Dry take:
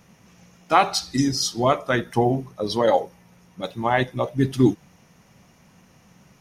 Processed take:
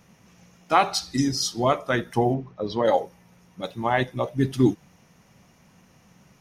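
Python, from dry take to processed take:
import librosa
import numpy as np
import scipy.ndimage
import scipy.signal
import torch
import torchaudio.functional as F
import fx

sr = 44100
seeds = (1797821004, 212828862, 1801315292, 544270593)

y = fx.air_absorb(x, sr, metres=190.0, at=(2.33, 2.84), fade=0.02)
y = y * 10.0 ** (-2.0 / 20.0)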